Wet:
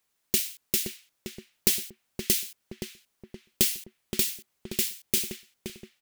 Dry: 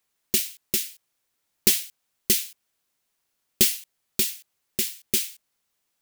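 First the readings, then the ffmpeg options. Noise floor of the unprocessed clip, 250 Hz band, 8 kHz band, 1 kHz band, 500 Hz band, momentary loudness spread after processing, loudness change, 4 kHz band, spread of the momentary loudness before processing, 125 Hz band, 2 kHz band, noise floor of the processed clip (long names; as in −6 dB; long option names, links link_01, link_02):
−77 dBFS, −1.0 dB, −3.0 dB, can't be measured, −1.0 dB, 18 LU, −3.5 dB, −3.0 dB, 15 LU, +0.5 dB, −2.5 dB, −77 dBFS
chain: -filter_complex "[0:a]acompressor=threshold=-22dB:ratio=2,asplit=2[link_01][link_02];[link_02]adelay=522,lowpass=frequency=1500:poles=1,volume=-4.5dB,asplit=2[link_03][link_04];[link_04]adelay=522,lowpass=frequency=1500:poles=1,volume=0.48,asplit=2[link_05][link_06];[link_06]adelay=522,lowpass=frequency=1500:poles=1,volume=0.48,asplit=2[link_07][link_08];[link_08]adelay=522,lowpass=frequency=1500:poles=1,volume=0.48,asplit=2[link_09][link_10];[link_10]adelay=522,lowpass=frequency=1500:poles=1,volume=0.48,asplit=2[link_11][link_12];[link_12]adelay=522,lowpass=frequency=1500:poles=1,volume=0.48[link_13];[link_03][link_05][link_07][link_09][link_11][link_13]amix=inputs=6:normalize=0[link_14];[link_01][link_14]amix=inputs=2:normalize=0"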